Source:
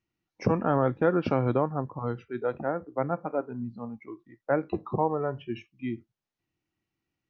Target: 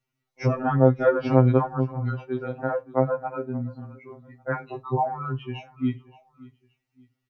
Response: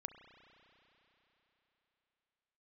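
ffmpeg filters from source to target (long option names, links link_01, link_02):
-af "aecho=1:1:574|1148:0.0841|0.0286,afftfilt=real='re*2.45*eq(mod(b,6),0)':imag='im*2.45*eq(mod(b,6),0)':win_size=2048:overlap=0.75,volume=5.5dB"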